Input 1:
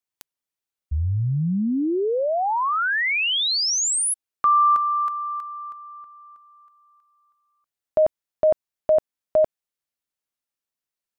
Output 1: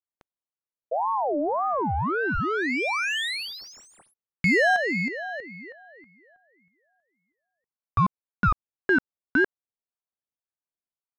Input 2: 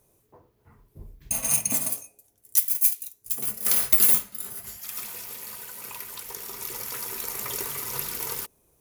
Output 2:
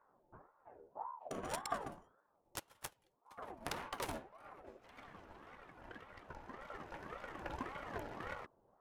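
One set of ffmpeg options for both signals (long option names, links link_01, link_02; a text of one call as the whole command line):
ffmpeg -i in.wav -af "adynamicsmooth=sensitivity=1.5:basefreq=810,aeval=exprs='val(0)*sin(2*PI*720*n/s+720*0.4/1.8*sin(2*PI*1.8*n/s))':channel_layout=same" out.wav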